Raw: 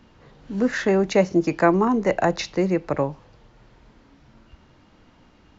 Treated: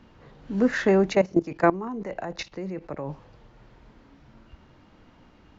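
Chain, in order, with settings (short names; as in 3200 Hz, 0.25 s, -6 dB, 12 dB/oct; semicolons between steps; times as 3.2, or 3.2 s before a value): high shelf 4600 Hz -7 dB; 1.15–3.1 level quantiser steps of 16 dB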